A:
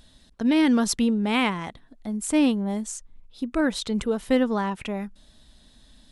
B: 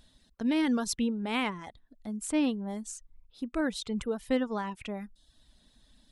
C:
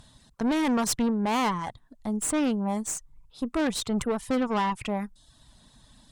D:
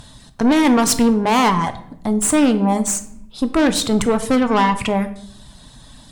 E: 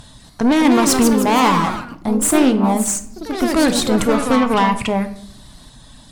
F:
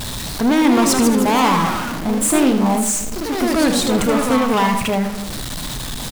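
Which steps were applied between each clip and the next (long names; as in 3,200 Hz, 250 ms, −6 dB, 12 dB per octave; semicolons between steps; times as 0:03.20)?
reverb reduction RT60 0.59 s; level −6.5 dB
graphic EQ with 10 bands 125 Hz +11 dB, 1,000 Hz +10 dB, 8,000 Hz +7 dB; tube saturation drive 28 dB, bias 0.55; level +6.5 dB
in parallel at −2.5 dB: brickwall limiter −25.5 dBFS, peak gain reduction 8 dB; on the sum: rectangular room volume 160 cubic metres, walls mixed, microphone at 0.33 metres; level +7.5 dB
delay with pitch and tempo change per echo 248 ms, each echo +2 semitones, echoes 3, each echo −6 dB
converter with a step at zero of −18 dBFS; single-tap delay 77 ms −9 dB; level −3.5 dB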